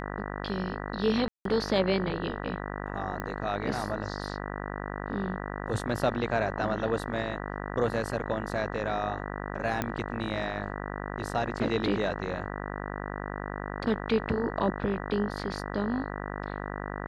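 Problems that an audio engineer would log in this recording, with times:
buzz 50 Hz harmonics 39 -36 dBFS
1.28–1.45 s: dropout 173 ms
3.20 s: pop -20 dBFS
9.82 s: pop -14 dBFS

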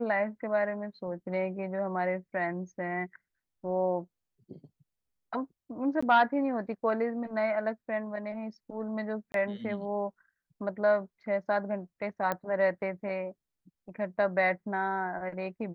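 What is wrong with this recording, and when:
6.01–6.03 s: dropout 15 ms
9.32–9.34 s: dropout 22 ms
12.32 s: pop -17 dBFS

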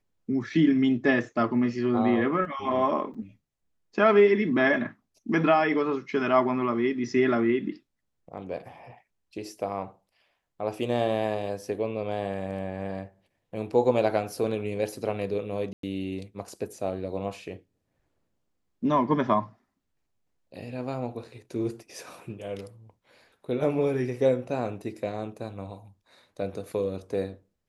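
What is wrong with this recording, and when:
3.14–3.15 s: dropout 5.5 ms
15.73–15.83 s: dropout 103 ms

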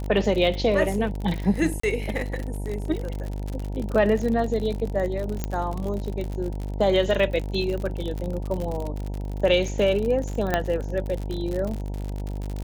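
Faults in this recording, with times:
buzz 50 Hz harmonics 19 -30 dBFS
crackle 55 per s -28 dBFS
1.80–1.83 s: dropout 34 ms
5.44 s: pop -12 dBFS
10.54 s: pop -8 dBFS

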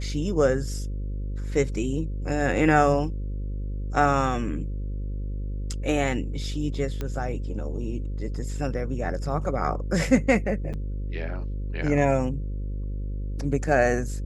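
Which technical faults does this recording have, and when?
buzz 50 Hz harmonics 11 -30 dBFS
7.01 s: pop -17 dBFS
10.73–10.74 s: dropout 7.5 ms

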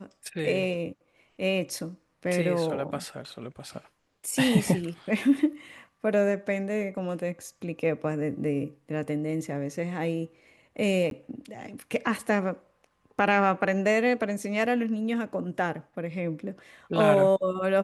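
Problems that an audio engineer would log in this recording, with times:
11.10–11.11 s: dropout 12 ms

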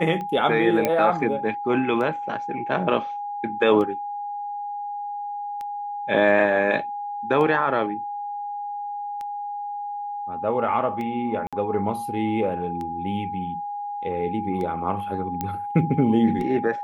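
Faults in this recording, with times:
tick 33 1/3 rpm -21 dBFS
whine 820 Hz -28 dBFS
0.85 s: pop -8 dBFS
11.47–11.53 s: dropout 56 ms
15.41 s: pop -13 dBFS

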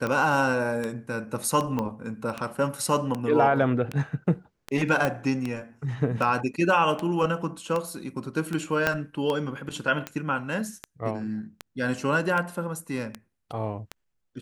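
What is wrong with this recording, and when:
tick 78 rpm -16 dBFS
1.79 s: pop -16 dBFS
5.05 s: pop -11 dBFS
8.87 s: pop -8 dBFS

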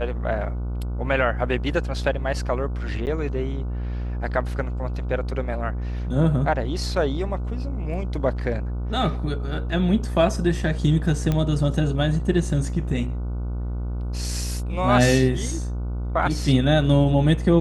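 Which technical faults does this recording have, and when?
buzz 60 Hz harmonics 25 -27 dBFS
3.06–3.07 s: dropout 9.2 ms
11.32 s: pop -11 dBFS

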